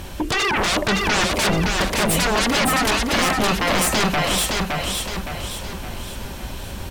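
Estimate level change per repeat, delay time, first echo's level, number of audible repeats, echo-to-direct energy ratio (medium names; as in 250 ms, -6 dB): -6.5 dB, 565 ms, -3.0 dB, 5, -2.0 dB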